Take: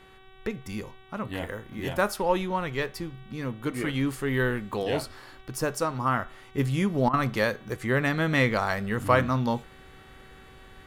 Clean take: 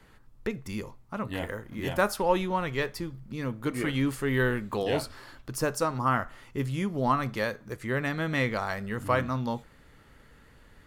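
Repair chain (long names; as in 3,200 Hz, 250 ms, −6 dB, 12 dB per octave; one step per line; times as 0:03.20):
hum removal 380.1 Hz, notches 10
repair the gap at 0:07.09, 43 ms
level correction −4.5 dB, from 0:06.58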